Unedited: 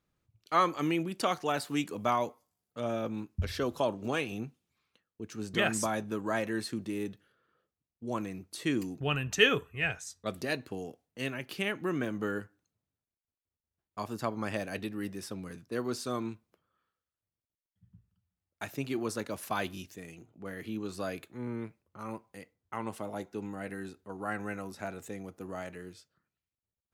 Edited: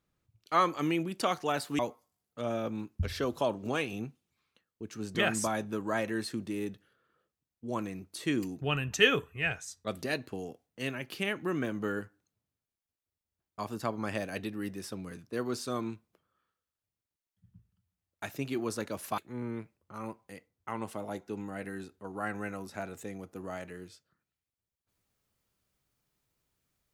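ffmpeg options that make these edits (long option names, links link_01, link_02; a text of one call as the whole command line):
ffmpeg -i in.wav -filter_complex "[0:a]asplit=3[link_01][link_02][link_03];[link_01]atrim=end=1.792[link_04];[link_02]atrim=start=2.178:end=19.572[link_05];[link_03]atrim=start=21.228[link_06];[link_04][link_05]acrossfade=duration=0.004:curve1=hsin:curve2=hsin[link_07];[link_07][link_06]acrossfade=duration=0.004:curve1=hsin:curve2=hsin" out.wav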